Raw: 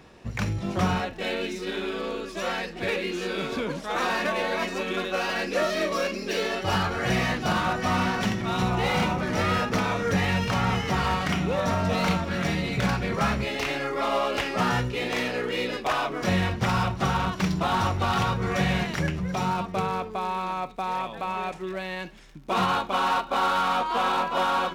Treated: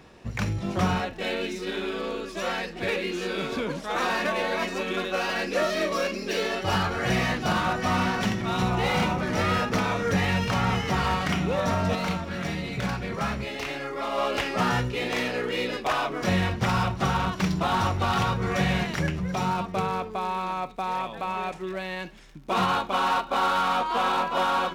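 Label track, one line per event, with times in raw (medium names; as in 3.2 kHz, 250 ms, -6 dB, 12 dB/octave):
11.950000	14.180000	gain -4 dB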